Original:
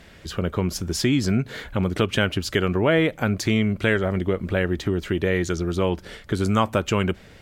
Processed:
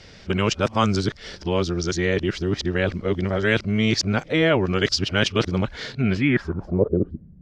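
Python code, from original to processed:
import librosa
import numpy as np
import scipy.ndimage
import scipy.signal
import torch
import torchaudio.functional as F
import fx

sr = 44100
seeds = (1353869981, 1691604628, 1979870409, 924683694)

y = np.flip(x).copy()
y = fx.filter_sweep_lowpass(y, sr, from_hz=5300.0, to_hz=160.0, start_s=5.88, end_s=7.31, q=3.7)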